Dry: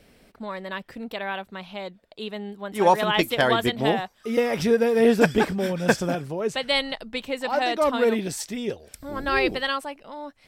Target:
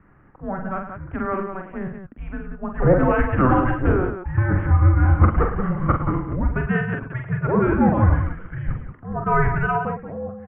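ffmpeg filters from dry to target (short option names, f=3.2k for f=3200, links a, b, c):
-af "aresample=8000,asoftclip=type=tanh:threshold=-14.5dB,aresample=44100,aecho=1:1:45|108|181:0.562|0.266|0.398,highpass=f=300:t=q:w=0.5412,highpass=f=300:t=q:w=1.307,lowpass=f=2k:t=q:w=0.5176,lowpass=f=2k:t=q:w=0.7071,lowpass=f=2k:t=q:w=1.932,afreqshift=-380,volume=5.5dB"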